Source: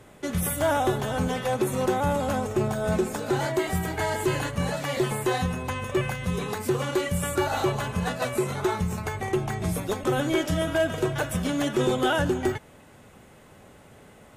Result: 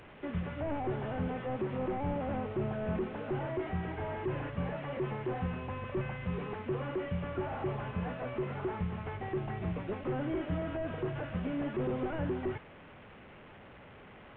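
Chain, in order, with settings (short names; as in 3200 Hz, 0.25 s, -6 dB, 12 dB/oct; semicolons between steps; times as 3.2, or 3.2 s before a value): delta modulation 16 kbps, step -39 dBFS; gain -7.5 dB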